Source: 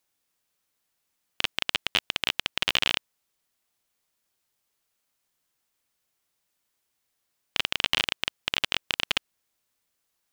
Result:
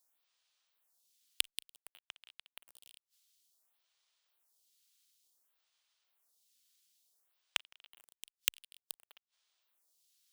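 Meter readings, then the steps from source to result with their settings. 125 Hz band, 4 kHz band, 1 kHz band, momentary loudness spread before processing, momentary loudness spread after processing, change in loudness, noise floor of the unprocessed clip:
below −25 dB, −15.5 dB, −21.5 dB, 6 LU, 20 LU, −11.0 dB, −78 dBFS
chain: each half-wave held at its own peak
high-pass filter 890 Hz 6 dB per octave
high shelf with overshoot 2,700 Hz +6.5 dB, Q 1.5
gate with flip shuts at −7 dBFS, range −34 dB
phaser with staggered stages 0.56 Hz
level −4.5 dB

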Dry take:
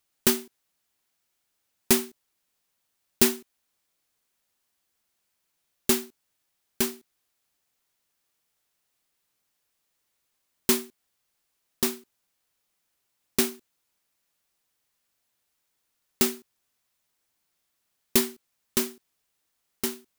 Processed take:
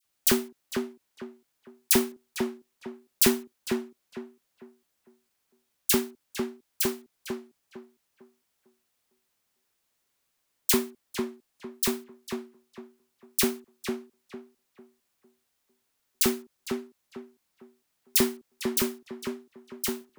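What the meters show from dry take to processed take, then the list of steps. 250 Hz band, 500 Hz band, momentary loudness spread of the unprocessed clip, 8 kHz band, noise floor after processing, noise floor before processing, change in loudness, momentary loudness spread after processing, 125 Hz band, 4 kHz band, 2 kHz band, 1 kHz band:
+1.5 dB, +1.5 dB, 10 LU, 0.0 dB, −77 dBFS, −77 dBFS, −2.5 dB, 22 LU, +1.0 dB, +0.5 dB, +1.0 dB, +1.5 dB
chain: all-pass dispersion lows, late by 49 ms, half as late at 1,700 Hz
on a send: tape delay 452 ms, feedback 33%, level −3.5 dB, low-pass 1,800 Hz

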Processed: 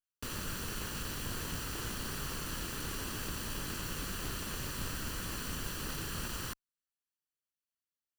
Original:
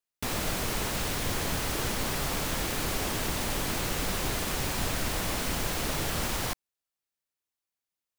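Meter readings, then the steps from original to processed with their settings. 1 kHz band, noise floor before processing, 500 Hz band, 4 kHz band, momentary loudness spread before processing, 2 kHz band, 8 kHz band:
−10.5 dB, below −85 dBFS, −12.0 dB, −8.0 dB, 0 LU, −8.5 dB, −8.0 dB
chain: lower of the sound and its delayed copy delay 0.67 ms
level −7 dB

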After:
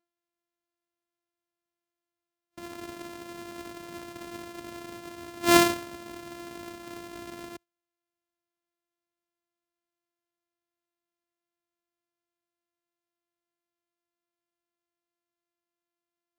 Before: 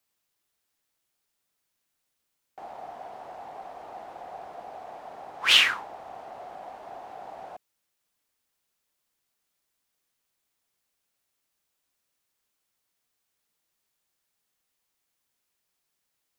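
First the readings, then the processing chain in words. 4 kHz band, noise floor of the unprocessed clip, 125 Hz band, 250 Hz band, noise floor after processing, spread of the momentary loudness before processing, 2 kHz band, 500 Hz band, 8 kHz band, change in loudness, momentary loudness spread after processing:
−10.0 dB, −80 dBFS, can't be measured, +23.0 dB, below −85 dBFS, 13 LU, −5.5 dB, +9.5 dB, +4.5 dB, −4.5 dB, 21 LU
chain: samples sorted by size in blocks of 128 samples
high-pass filter 40 Hz
noise reduction from a noise print of the clip's start 12 dB

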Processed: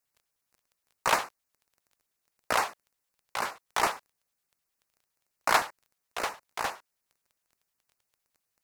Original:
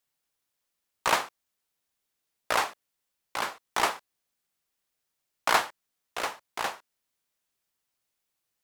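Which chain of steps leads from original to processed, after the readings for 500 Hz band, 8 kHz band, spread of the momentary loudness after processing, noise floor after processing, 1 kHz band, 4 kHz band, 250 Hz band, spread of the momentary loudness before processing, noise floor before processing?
−0.5 dB, −0.5 dB, 15 LU, −83 dBFS, −0.5 dB, −2.5 dB, −1.0 dB, 15 LU, −82 dBFS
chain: surface crackle 12 per second −48 dBFS
auto-filter notch square 9.7 Hz 280–3,300 Hz

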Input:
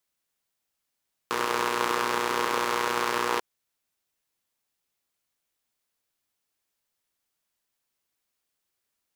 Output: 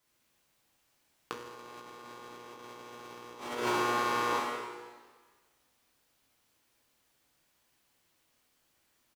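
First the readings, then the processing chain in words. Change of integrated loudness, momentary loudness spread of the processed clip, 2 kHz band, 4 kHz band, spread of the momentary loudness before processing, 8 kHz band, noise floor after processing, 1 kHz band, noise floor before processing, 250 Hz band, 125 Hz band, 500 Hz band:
−6.0 dB, 19 LU, −8.0 dB, −8.5 dB, 4 LU, −9.5 dB, −74 dBFS, −6.0 dB, −82 dBFS, −4.0 dB, −2.5 dB, −6.5 dB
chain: single-tap delay 983 ms −14.5 dB
dynamic equaliser 1,400 Hz, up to −6 dB, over −39 dBFS, Q 0.75
dense smooth reverb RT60 1.5 s, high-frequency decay 0.95×, DRR −5 dB
compressor whose output falls as the input rises −34 dBFS, ratio −0.5
high-shelf EQ 4,400 Hz −7 dB
level −1.5 dB

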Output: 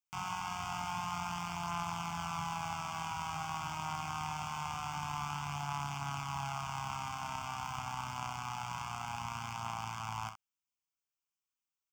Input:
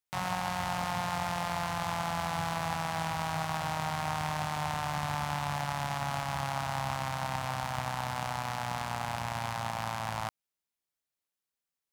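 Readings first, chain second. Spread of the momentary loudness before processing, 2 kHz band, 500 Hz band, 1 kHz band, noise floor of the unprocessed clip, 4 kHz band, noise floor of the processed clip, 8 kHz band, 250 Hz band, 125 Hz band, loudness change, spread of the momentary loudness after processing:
2 LU, −7.0 dB, −13.5 dB, −4.5 dB, below −85 dBFS, −5.0 dB, below −85 dBFS, −3.5 dB, −7.0 dB, −6.5 dB, −5.5 dB, 2 LU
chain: low-shelf EQ 480 Hz −4.5 dB
phaser with its sweep stopped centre 2,700 Hz, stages 8
ambience of single reflections 35 ms −10 dB, 64 ms −11 dB
level −2.5 dB

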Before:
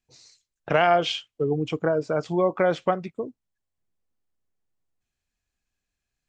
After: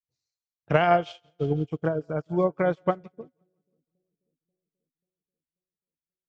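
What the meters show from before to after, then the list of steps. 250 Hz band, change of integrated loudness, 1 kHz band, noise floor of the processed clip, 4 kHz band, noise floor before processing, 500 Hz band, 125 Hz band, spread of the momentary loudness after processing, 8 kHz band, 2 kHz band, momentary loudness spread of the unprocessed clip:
−0.5 dB, −1.5 dB, −2.0 dB, below −85 dBFS, below −10 dB, −85 dBFS, −2.5 dB, +2.5 dB, 10 LU, can't be measured, −3.0 dB, 10 LU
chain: parametric band 77 Hz +12 dB 2.7 octaves
on a send: echo with a time of its own for lows and highs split 450 Hz, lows 537 ms, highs 169 ms, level −16 dB
on the sum: expander for the loud parts 2.5 to 1, over −38 dBFS

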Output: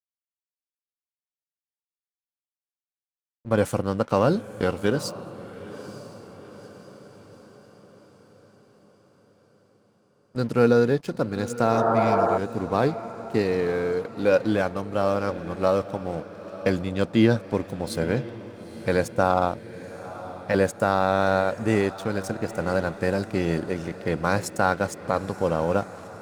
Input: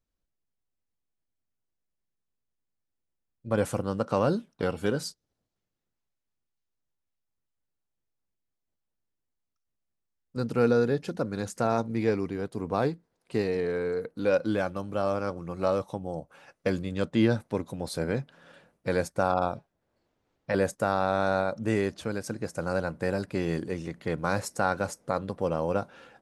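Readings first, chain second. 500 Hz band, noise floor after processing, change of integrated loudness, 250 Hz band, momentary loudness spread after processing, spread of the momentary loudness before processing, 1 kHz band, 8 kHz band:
+5.0 dB, below −85 dBFS, +5.0 dB, +4.5 dB, 17 LU, 9 LU, +5.5 dB, +3.0 dB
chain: dead-zone distortion −48 dBFS
healed spectral selection 0:11.77–0:12.35, 270–1,900 Hz before
feedback delay with all-pass diffusion 918 ms, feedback 54%, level −15 dB
level +5 dB

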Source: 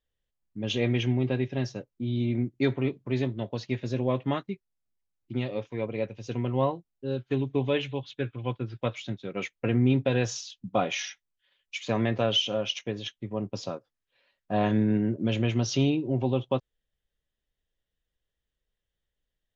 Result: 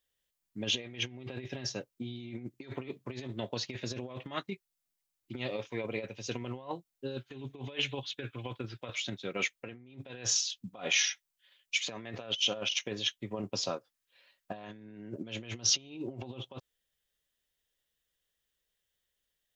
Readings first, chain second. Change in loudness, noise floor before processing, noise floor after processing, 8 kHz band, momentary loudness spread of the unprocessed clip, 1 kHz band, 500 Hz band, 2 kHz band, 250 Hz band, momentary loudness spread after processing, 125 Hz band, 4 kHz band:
−6.0 dB, −85 dBFS, −85 dBFS, can't be measured, 11 LU, −10.5 dB, −11.0 dB, −0.5 dB, −14.0 dB, 16 LU, −14.5 dB, +0.5 dB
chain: compressor whose output falls as the input rises −31 dBFS, ratio −0.5
spectral tilt +2.5 dB per octave
level −3 dB

